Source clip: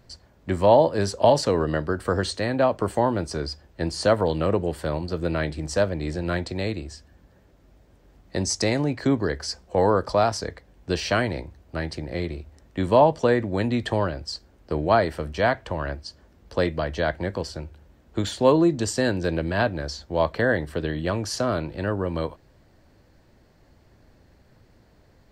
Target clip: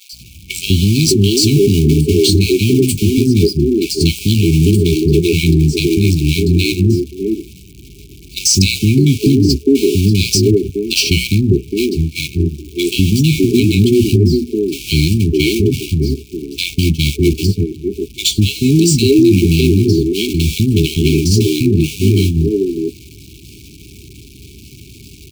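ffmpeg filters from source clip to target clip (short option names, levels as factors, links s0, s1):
-filter_complex "[0:a]aeval=exprs='val(0)+0.5*0.0355*sgn(val(0))':c=same,highpass=60,bandreject=f=60:t=h:w=6,bandreject=f=120:t=h:w=6,bandreject=f=180:t=h:w=6,bandreject=f=240:t=h:w=6,agate=range=0.126:threshold=0.0562:ratio=16:detection=peak,afftfilt=real='re*(1-between(b*sr/4096,430,2200))':imag='im*(1-between(b*sr/4096,430,2200))':win_size=4096:overlap=0.75,adynamicequalizer=threshold=0.00631:dfrequency=2800:dqfactor=0.83:tfrequency=2800:tqfactor=0.83:attack=5:release=100:ratio=0.375:range=1.5:mode=cutabove:tftype=bell,aeval=exprs='val(0)+0.000891*(sin(2*PI*60*n/s)+sin(2*PI*2*60*n/s)/2+sin(2*PI*3*60*n/s)/3+sin(2*PI*4*60*n/s)/4+sin(2*PI*5*60*n/s)/5)':c=same,acrossover=split=270|1000[s0][s1][s2];[s0]adelay=200[s3];[s1]adelay=610[s4];[s3][s4][s2]amix=inputs=3:normalize=0,alimiter=level_in=8.91:limit=0.891:release=50:level=0:latency=1,volume=0.891"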